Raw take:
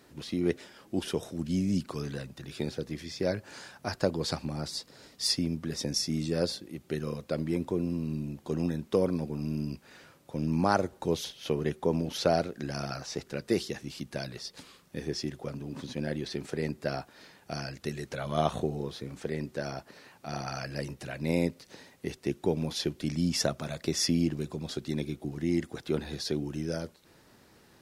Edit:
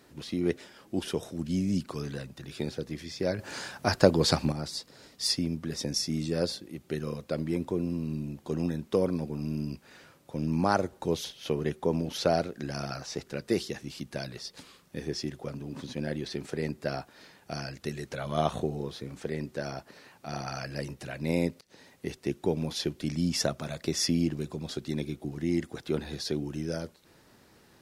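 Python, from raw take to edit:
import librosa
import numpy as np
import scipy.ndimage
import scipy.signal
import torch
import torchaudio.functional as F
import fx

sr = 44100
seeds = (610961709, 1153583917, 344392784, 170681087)

y = fx.edit(x, sr, fx.clip_gain(start_s=3.39, length_s=1.13, db=7.5),
    fx.fade_in_from(start_s=21.61, length_s=0.31, floor_db=-20.5), tone=tone)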